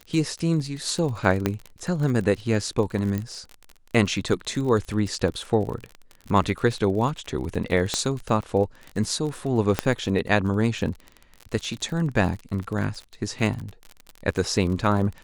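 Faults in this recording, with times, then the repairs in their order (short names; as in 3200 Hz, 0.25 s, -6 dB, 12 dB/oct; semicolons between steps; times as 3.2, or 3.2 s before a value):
crackle 40/s -30 dBFS
1.46 pop -8 dBFS
3.18 pop -16 dBFS
7.94 pop -9 dBFS
9.79 pop -6 dBFS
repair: de-click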